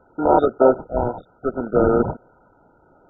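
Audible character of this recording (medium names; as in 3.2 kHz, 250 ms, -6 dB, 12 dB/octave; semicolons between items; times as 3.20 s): aliases and images of a low sample rate 1.7 kHz, jitter 0%; random-step tremolo; a quantiser's noise floor 8-bit, dither triangular; MP2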